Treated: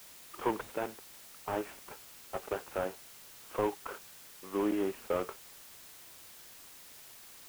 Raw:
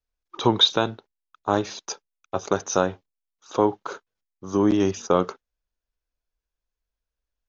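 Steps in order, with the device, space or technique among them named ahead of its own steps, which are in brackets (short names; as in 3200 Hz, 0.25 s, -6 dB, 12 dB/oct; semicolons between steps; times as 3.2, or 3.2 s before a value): army field radio (BPF 320–3300 Hz; CVSD 16 kbps; white noise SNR 14 dB); gain -7.5 dB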